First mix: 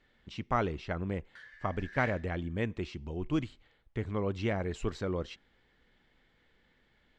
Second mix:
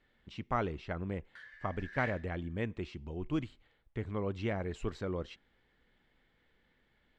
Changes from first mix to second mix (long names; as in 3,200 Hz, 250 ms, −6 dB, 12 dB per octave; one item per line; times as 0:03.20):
speech −3.0 dB
master: add parametric band 6,000 Hz −4 dB 1.1 octaves